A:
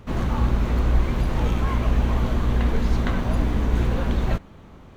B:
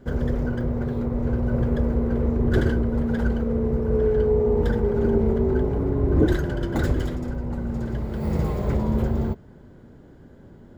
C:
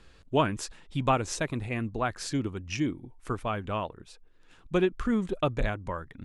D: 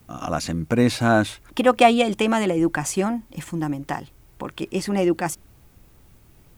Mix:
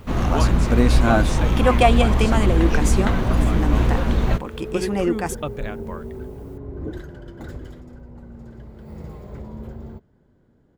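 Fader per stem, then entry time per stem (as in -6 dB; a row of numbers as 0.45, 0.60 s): +3.0, -12.5, -2.0, -1.5 dB; 0.00, 0.65, 0.00, 0.00 s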